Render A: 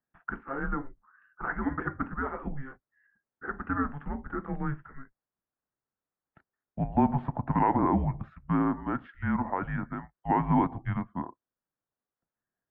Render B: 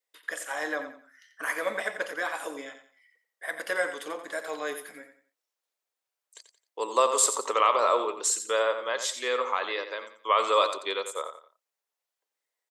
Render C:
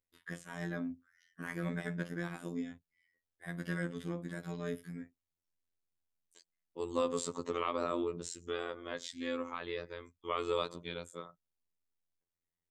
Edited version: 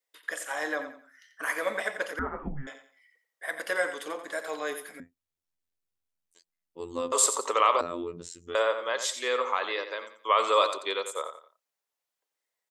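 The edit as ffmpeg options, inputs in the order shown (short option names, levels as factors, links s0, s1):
-filter_complex "[2:a]asplit=2[s0][s1];[1:a]asplit=4[s2][s3][s4][s5];[s2]atrim=end=2.192[s6];[0:a]atrim=start=2.188:end=2.672[s7];[s3]atrim=start=2.668:end=5.002[s8];[s0]atrim=start=4.998:end=7.122[s9];[s4]atrim=start=7.118:end=7.812[s10];[s1]atrim=start=7.808:end=8.552[s11];[s5]atrim=start=8.548[s12];[s6][s7]acrossfade=d=0.004:c1=hsin:c2=hsin[s13];[s13][s8]acrossfade=d=0.004:c1=hsin:c2=hsin[s14];[s14][s9]acrossfade=d=0.004:c1=hsin:c2=hsin[s15];[s15][s10]acrossfade=d=0.004:c1=hsin:c2=hsin[s16];[s16][s11]acrossfade=d=0.004:c1=hsin:c2=hsin[s17];[s17][s12]acrossfade=d=0.004:c1=hsin:c2=hsin"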